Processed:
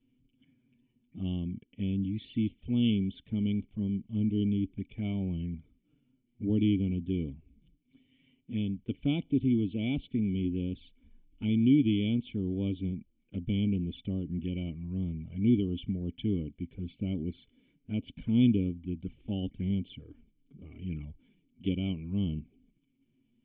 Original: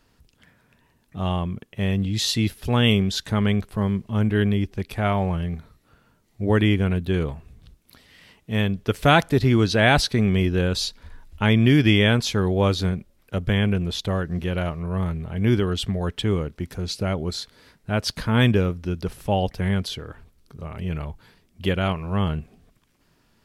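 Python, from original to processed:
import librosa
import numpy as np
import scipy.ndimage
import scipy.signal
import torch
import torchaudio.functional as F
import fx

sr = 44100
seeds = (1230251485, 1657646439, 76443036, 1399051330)

y = fx.rider(x, sr, range_db=3, speed_s=2.0)
y = fx.env_flanger(y, sr, rest_ms=8.5, full_db=-18.5)
y = fx.formant_cascade(y, sr, vowel='i')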